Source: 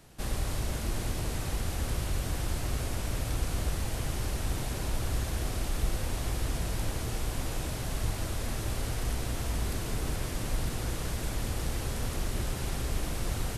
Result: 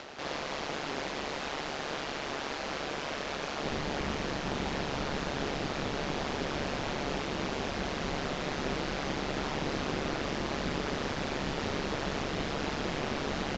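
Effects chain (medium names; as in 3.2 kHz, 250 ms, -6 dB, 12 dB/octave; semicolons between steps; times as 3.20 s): Bessel low-pass 3.9 kHz, order 4; early reflections 40 ms -6 dB, 74 ms -6.5 dB; upward compressor, threshold -35 dBFS; Bessel high-pass 460 Hz, order 2, from 3.63 s 220 Hz; ring modulator 71 Hz; trim +8 dB; µ-law 128 kbps 16 kHz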